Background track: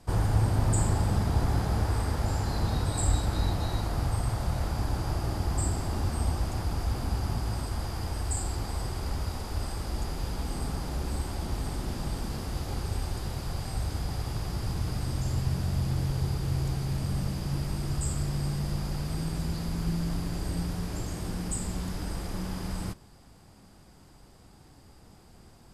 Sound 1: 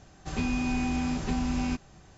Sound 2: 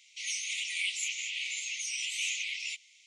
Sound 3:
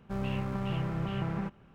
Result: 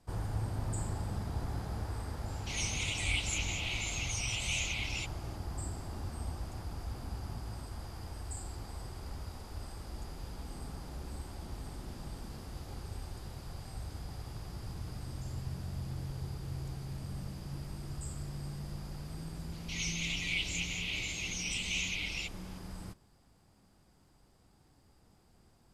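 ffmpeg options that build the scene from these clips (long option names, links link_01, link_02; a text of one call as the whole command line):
ffmpeg -i bed.wav -i cue0.wav -i cue1.wav -filter_complex "[2:a]asplit=2[link_01][link_02];[0:a]volume=-11dB[link_03];[link_02]lowpass=frequency=6600:width=0.5412,lowpass=frequency=6600:width=1.3066[link_04];[link_01]atrim=end=3.06,asetpts=PTS-STARTPTS,volume=-2dB,afade=type=in:duration=0.004:curve=hsin,afade=type=out:start_time=3.056:duration=0.004:curve=hsin,adelay=2300[link_05];[link_04]atrim=end=3.06,asetpts=PTS-STARTPTS,volume=-1.5dB,afade=type=in:duration=0.004:curve=hsin,afade=type=out:start_time=3.056:duration=0.004:curve=hsin,adelay=19520[link_06];[link_03][link_05][link_06]amix=inputs=3:normalize=0" out.wav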